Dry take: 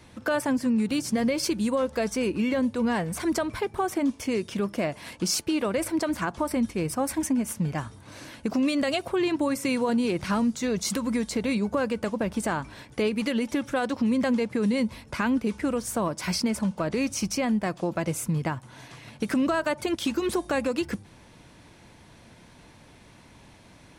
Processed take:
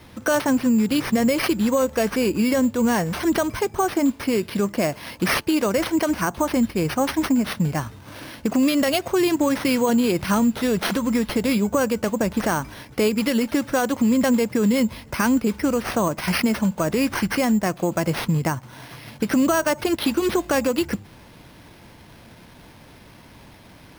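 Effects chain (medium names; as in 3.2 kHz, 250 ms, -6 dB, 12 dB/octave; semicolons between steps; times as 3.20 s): sample-and-hold 6×; trim +5.5 dB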